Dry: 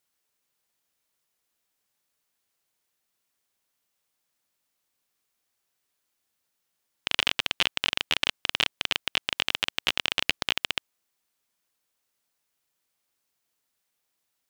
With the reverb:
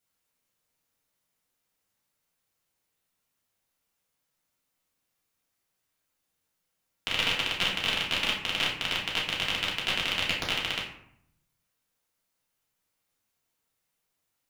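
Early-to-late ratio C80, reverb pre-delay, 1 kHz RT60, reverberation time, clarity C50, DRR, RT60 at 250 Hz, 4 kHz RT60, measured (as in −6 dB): 8.5 dB, 3 ms, 0.70 s, 0.70 s, 5.0 dB, −5.5 dB, 0.95 s, 0.40 s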